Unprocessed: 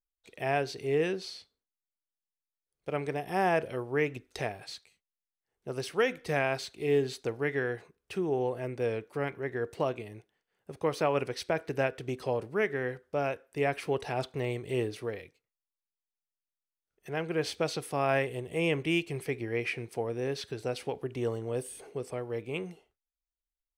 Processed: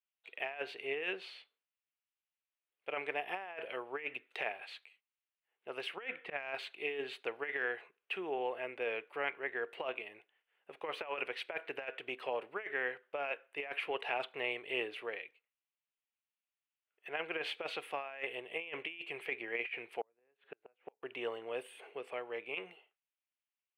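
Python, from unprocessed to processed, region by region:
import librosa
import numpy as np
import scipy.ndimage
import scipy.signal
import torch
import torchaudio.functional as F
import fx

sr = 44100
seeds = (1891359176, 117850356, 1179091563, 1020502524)

y = fx.chain(x, sr, fx.bass_treble(bass_db=5, treble_db=-12),
    fx.auto_swell(attack_ms=111.0), at=(5.96, 6.54))
y = fx.chain(y, sr, fx.lowpass(hz=1600.0, slope=12),
    fx.gate_flip(shuts_db=-27.0, range_db=-36), at=(20.01, 21.03))
y = scipy.signal.sosfilt(scipy.signal.butter(2, 610.0, 'highpass', fs=sr, output='sos'), y)
y = fx.high_shelf_res(y, sr, hz=4000.0, db=-13.0, q=3.0)
y = fx.over_compress(y, sr, threshold_db=-33.0, ratio=-0.5)
y = F.gain(torch.from_numpy(y), -3.5).numpy()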